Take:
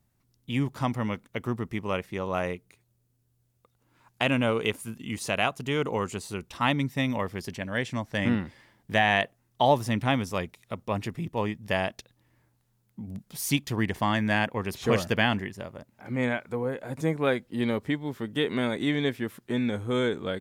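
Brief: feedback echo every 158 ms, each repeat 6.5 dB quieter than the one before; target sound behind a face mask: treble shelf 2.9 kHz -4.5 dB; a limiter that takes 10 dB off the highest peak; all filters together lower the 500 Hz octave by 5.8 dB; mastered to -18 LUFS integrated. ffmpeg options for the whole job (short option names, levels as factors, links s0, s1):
-af "equalizer=f=500:t=o:g=-7,alimiter=limit=0.0944:level=0:latency=1,highshelf=f=2900:g=-4.5,aecho=1:1:158|316|474|632|790|948:0.473|0.222|0.105|0.0491|0.0231|0.0109,volume=5.31"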